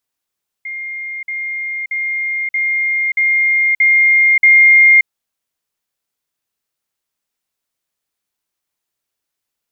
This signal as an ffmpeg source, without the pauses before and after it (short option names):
-f lavfi -i "aevalsrc='pow(10,(-22.5+3*floor(t/0.63))/20)*sin(2*PI*2120*t)*clip(min(mod(t,0.63),0.58-mod(t,0.63))/0.005,0,1)':d=4.41:s=44100"